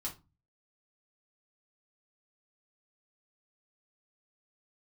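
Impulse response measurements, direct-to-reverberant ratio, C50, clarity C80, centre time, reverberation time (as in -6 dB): -3.0 dB, 12.5 dB, 21.0 dB, 15 ms, 0.25 s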